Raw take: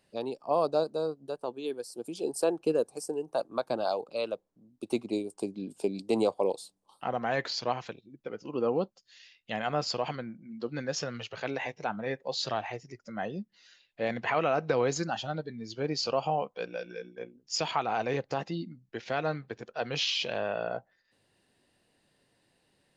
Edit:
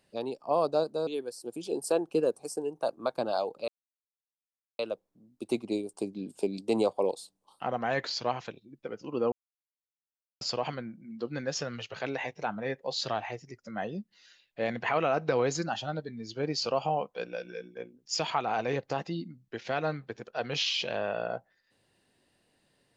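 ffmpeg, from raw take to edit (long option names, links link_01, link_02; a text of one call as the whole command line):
ffmpeg -i in.wav -filter_complex "[0:a]asplit=5[link_01][link_02][link_03][link_04][link_05];[link_01]atrim=end=1.072[link_06];[link_02]atrim=start=1.588:end=4.2,asetpts=PTS-STARTPTS,afade=type=out:start_time=2.608:duration=0.004:curve=hsin,apad=pad_dur=1.11[link_07];[link_03]atrim=start=4.2:end=8.73,asetpts=PTS-STARTPTS,afade=type=in:duration=0.004:curve=hsin,afade=type=out:start_time=4.526:duration=0.004:curve=hsin[link_08];[link_04]atrim=start=8.73:end=9.82,asetpts=PTS-STARTPTS,volume=0[link_09];[link_05]atrim=start=9.82,asetpts=PTS-STARTPTS,afade=type=in:duration=0.004:curve=hsin[link_10];[link_07][link_08][link_09][link_10]concat=n=4:v=0:a=1[link_11];[link_06][link_11]acrossfade=duration=0.004:curve1=hsin:curve2=hsin" out.wav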